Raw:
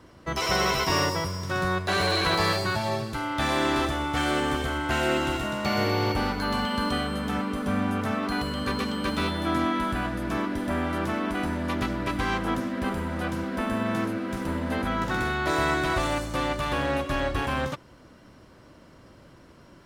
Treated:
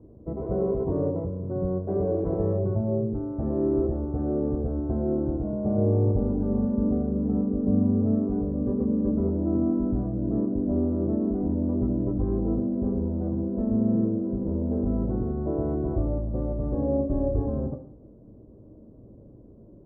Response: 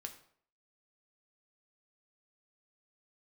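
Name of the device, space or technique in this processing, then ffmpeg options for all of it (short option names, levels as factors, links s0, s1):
next room: -filter_complex "[0:a]lowpass=f=520:w=0.5412,lowpass=f=520:w=1.3066[s0];[1:a]atrim=start_sample=2205[s1];[s0][s1]afir=irnorm=-1:irlink=0,volume=2.37"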